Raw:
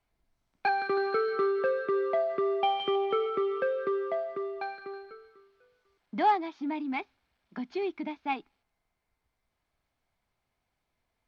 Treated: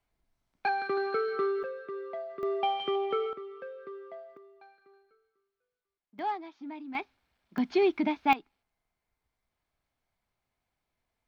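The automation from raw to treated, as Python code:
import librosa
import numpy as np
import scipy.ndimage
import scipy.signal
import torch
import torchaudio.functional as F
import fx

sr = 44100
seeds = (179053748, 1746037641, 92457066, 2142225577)

y = fx.gain(x, sr, db=fx.steps((0.0, -2.0), (1.63, -10.5), (2.43, -2.0), (3.33, -13.5), (4.37, -20.0), (6.19, -8.5), (6.95, 0.0), (7.58, 7.5), (8.33, -3.0)))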